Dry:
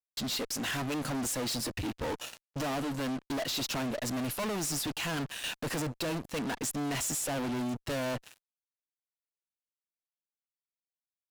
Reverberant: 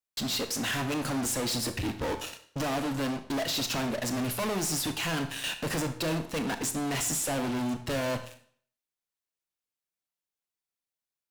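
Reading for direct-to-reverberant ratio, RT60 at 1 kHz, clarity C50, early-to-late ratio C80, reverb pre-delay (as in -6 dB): 8.0 dB, 0.55 s, 11.0 dB, 14.5 dB, 25 ms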